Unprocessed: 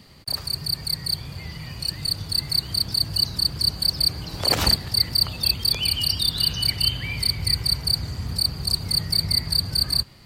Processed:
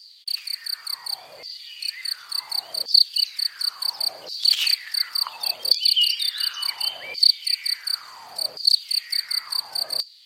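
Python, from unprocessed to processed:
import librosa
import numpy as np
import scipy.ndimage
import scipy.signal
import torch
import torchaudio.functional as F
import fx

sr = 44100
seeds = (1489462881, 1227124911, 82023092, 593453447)

y = fx.filter_lfo_highpass(x, sr, shape='saw_down', hz=0.7, low_hz=510.0, high_hz=4900.0, q=5.9)
y = F.gain(torch.from_numpy(y), -4.0).numpy()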